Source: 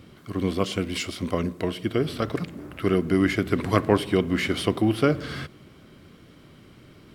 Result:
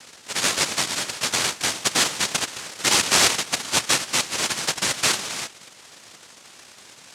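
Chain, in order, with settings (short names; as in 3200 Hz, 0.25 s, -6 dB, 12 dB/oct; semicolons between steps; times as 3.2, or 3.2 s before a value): 3.37–5.13 HPF 430 Hz 12 dB/oct; noise vocoder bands 1; gain +3 dB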